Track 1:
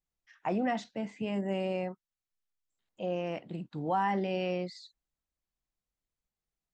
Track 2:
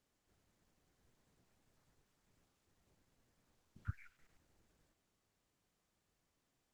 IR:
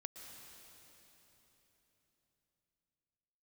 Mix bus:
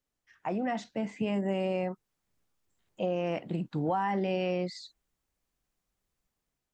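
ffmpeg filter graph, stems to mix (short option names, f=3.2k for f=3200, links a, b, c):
-filter_complex "[0:a]equalizer=f=3.9k:w=1.5:g=-3,dynaudnorm=f=640:g=3:m=9dB,volume=-2dB,asplit=2[a][b];[1:a]volume=-6dB[c];[b]apad=whole_len=297103[d];[c][d]sidechaincompress=threshold=-29dB:ratio=8:attack=16:release=342[e];[a][e]amix=inputs=2:normalize=0,acompressor=threshold=-26dB:ratio=6"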